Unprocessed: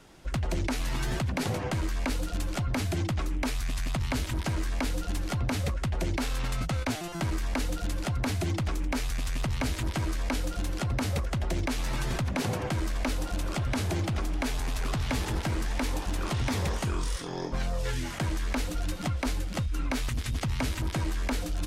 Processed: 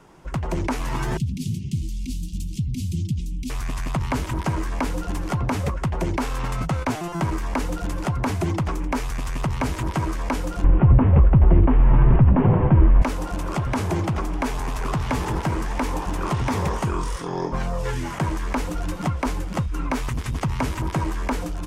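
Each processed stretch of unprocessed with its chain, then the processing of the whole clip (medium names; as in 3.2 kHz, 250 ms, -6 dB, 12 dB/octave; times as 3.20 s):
1.17–3.50 s: inverse Chebyshev band-stop 510–1600 Hz, stop band 50 dB + comb of notches 290 Hz
10.64–13.02 s: CVSD coder 16 kbps + tilt EQ -3.5 dB/octave + doubling 15 ms -14 dB
whole clip: fifteen-band graphic EQ 160 Hz +6 dB, 400 Hz +5 dB, 1 kHz +9 dB, 4 kHz -6 dB; level rider gain up to 3 dB; peaking EQ 12 kHz -3 dB 0.97 oct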